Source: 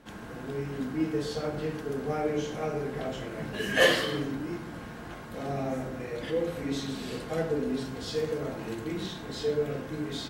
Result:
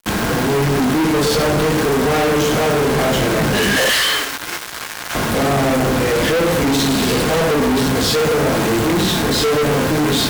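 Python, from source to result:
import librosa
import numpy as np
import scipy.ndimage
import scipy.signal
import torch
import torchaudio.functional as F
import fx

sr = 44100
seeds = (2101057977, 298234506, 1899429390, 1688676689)

p1 = fx.highpass(x, sr, hz=1300.0, slope=12, at=(3.89, 5.15))
p2 = fx.quant_dither(p1, sr, seeds[0], bits=8, dither='triangular')
p3 = p1 + (p2 * librosa.db_to_amplitude(-10.0))
p4 = fx.fuzz(p3, sr, gain_db=47.0, gate_db=-44.0)
y = p4 * librosa.db_to_amplitude(-1.0)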